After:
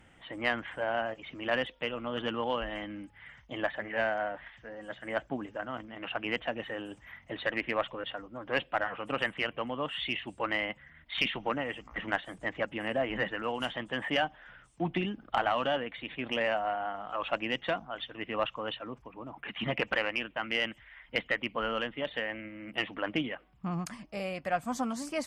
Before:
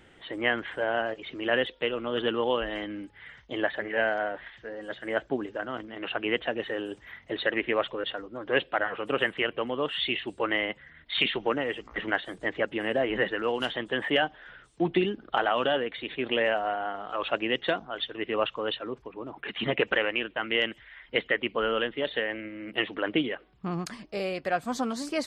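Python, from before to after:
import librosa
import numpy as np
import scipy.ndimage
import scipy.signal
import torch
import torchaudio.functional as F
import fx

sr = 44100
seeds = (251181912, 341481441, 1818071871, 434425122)

y = fx.graphic_eq_15(x, sr, hz=(400, 1600, 4000), db=(-12, -4, -10))
y = fx.cheby_harmonics(y, sr, harmonics=(6, 8), levels_db=(-19, -24), full_scale_db=-10.5)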